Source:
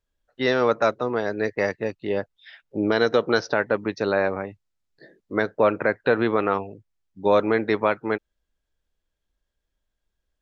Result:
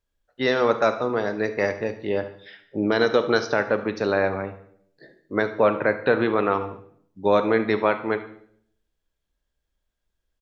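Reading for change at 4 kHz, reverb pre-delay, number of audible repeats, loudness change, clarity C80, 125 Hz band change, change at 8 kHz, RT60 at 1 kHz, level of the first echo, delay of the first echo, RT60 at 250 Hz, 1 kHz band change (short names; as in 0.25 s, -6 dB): +0.5 dB, 25 ms, 3, +0.5 dB, 15.0 dB, +0.5 dB, n/a, 0.55 s, -16.0 dB, 72 ms, 0.75 s, +0.5 dB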